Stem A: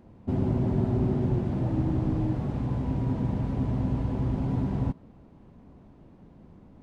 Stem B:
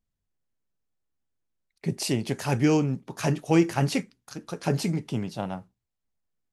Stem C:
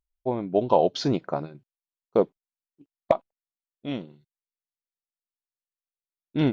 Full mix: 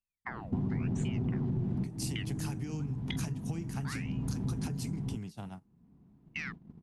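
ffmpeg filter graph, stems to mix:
ffmpeg -i stem1.wav -i stem2.wav -i stem3.wav -filter_complex "[0:a]equalizer=frequency=170:width=1:gain=12,aeval=exprs='(tanh(3.98*val(0)+0.15)-tanh(0.15))/3.98':channel_layout=same,adelay=250,volume=-2dB[link_01];[1:a]acrossover=split=150[link_02][link_03];[link_03]acompressor=threshold=-42dB:ratio=2.5[link_04];[link_02][link_04]amix=inputs=2:normalize=0,volume=-3.5dB,asplit=2[link_05][link_06];[2:a]acompressor=threshold=-29dB:ratio=6,aeval=exprs='val(0)*sin(2*PI*1500*n/s+1500*0.8/0.96*sin(2*PI*0.96*n/s))':channel_layout=same,volume=-4dB[link_07];[link_06]apad=whole_len=311943[link_08];[link_01][link_08]sidechaincompress=threshold=-49dB:ratio=5:attack=16:release=513[link_09];[link_05][link_07]amix=inputs=2:normalize=0,equalizer=frequency=9700:width_type=o:width=1.7:gain=9.5,acompressor=threshold=-34dB:ratio=6,volume=0dB[link_10];[link_09][link_10]amix=inputs=2:normalize=0,agate=range=-14dB:threshold=-42dB:ratio=16:detection=peak,equalizer=frequency=560:width_type=o:width=0.31:gain=-10,acompressor=threshold=-29dB:ratio=10" out.wav

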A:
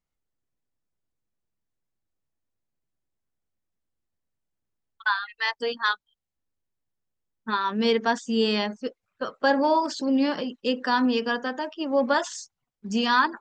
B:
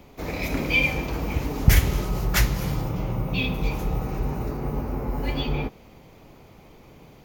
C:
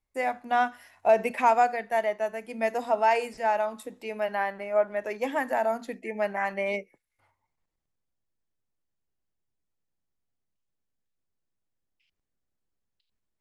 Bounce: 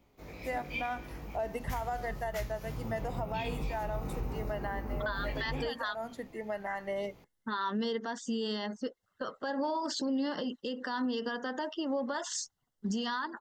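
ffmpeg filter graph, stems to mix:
ffmpeg -i stem1.wav -i stem2.wav -i stem3.wav -filter_complex "[0:a]volume=2.5dB[link_01];[1:a]flanger=delay=17:depth=3.5:speed=2.1,volume=-5dB,afade=type=in:start_time=2.6:duration=0.59:silence=0.354813[link_02];[2:a]adelay=300,volume=-5dB[link_03];[link_01][link_03]amix=inputs=2:normalize=0,asuperstop=centerf=2400:order=12:qfactor=4.6,acompressor=threshold=-26dB:ratio=4,volume=0dB[link_04];[link_02][link_04]amix=inputs=2:normalize=0,alimiter=level_in=1.5dB:limit=-24dB:level=0:latency=1:release=145,volume=-1.5dB" out.wav

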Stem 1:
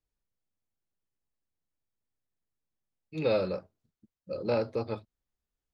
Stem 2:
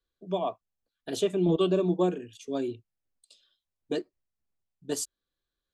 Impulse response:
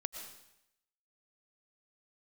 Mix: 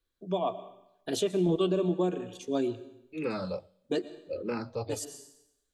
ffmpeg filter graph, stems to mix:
-filter_complex "[0:a]asplit=2[link_01][link_02];[link_02]afreqshift=-1.6[link_03];[link_01][link_03]amix=inputs=2:normalize=1,volume=0.5dB,asplit=3[link_04][link_05][link_06];[link_05]volume=-23dB[link_07];[1:a]volume=-1.5dB,asplit=2[link_08][link_09];[link_09]volume=-5dB[link_10];[link_06]apad=whole_len=253086[link_11];[link_08][link_11]sidechaincompress=threshold=-48dB:ratio=8:attack=16:release=367[link_12];[2:a]atrim=start_sample=2205[link_13];[link_07][link_10]amix=inputs=2:normalize=0[link_14];[link_14][link_13]afir=irnorm=-1:irlink=0[link_15];[link_04][link_12][link_15]amix=inputs=3:normalize=0,alimiter=limit=-18dB:level=0:latency=1:release=250"

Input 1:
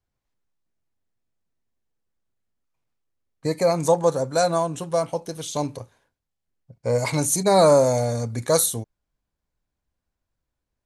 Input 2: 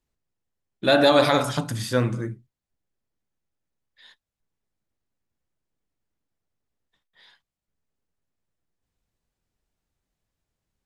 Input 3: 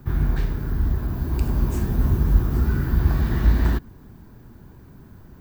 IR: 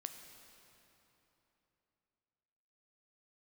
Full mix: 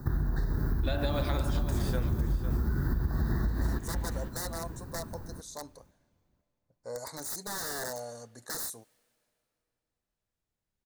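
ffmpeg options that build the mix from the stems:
-filter_complex "[0:a]highpass=frequency=730:poles=1,aeval=exprs='(mod(8.41*val(0)+1,2)-1)/8.41':channel_layout=same,volume=-12dB,asplit=3[link_01][link_02][link_03];[link_02]volume=-18.5dB[link_04];[1:a]acompressor=threshold=-21dB:ratio=2,volume=-7dB,asplit=2[link_05][link_06];[link_06]volume=-12dB[link_07];[2:a]volume=2.5dB,asplit=2[link_08][link_09];[link_09]volume=-19.5dB[link_10];[link_03]apad=whole_len=478661[link_11];[link_05][link_11]sidechaincompress=threshold=-49dB:ratio=8:attack=16:release=1410[link_12];[link_01][link_08]amix=inputs=2:normalize=0,asuperstop=centerf=2700:order=12:qfactor=1.5,acompressor=threshold=-20dB:ratio=6,volume=0dB[link_13];[3:a]atrim=start_sample=2205[link_14];[link_04][link_14]afir=irnorm=-1:irlink=0[link_15];[link_07][link_10]amix=inputs=2:normalize=0,aecho=0:1:504|1008|1512|2016:1|0.25|0.0625|0.0156[link_16];[link_12][link_13][link_15][link_16]amix=inputs=4:normalize=0,acompressor=threshold=-25dB:ratio=6"

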